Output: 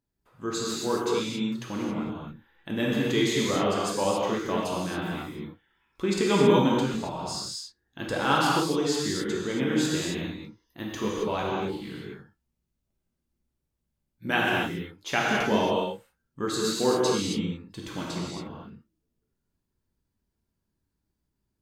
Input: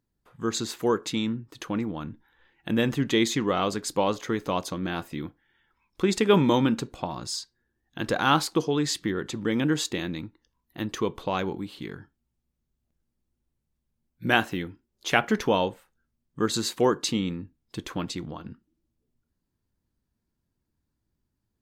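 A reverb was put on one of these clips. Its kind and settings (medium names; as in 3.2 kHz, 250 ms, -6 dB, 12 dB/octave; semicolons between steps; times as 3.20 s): gated-style reverb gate 300 ms flat, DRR -5 dB; trim -6 dB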